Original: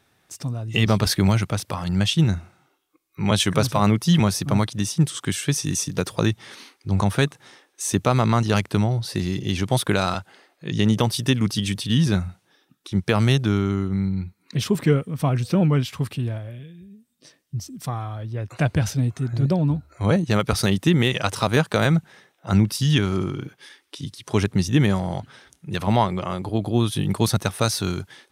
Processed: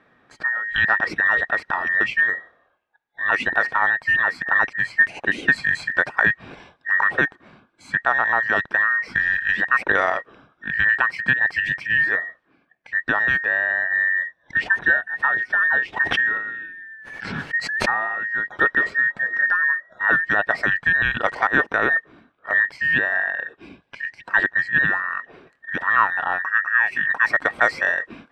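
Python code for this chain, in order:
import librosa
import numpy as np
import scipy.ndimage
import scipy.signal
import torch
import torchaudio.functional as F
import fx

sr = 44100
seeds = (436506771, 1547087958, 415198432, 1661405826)

y = fx.band_invert(x, sr, width_hz=2000)
y = scipy.signal.sosfilt(scipy.signal.butter(2, 1800.0, 'lowpass', fs=sr, output='sos'), y)
y = fx.low_shelf(y, sr, hz=94.0, db=-10.0)
y = fx.rider(y, sr, range_db=4, speed_s=0.5)
y = fx.low_shelf(y, sr, hz=290.0, db=5.5)
y = fx.pre_swell(y, sr, db_per_s=39.0, at=(15.96, 18.23), fade=0.02)
y = y * 10.0 ** (3.5 / 20.0)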